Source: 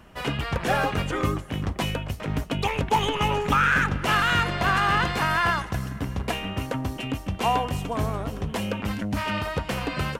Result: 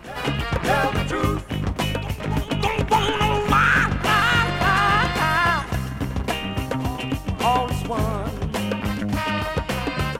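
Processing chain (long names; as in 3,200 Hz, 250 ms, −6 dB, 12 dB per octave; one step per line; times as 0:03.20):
backwards echo 605 ms −15.5 dB
level +3.5 dB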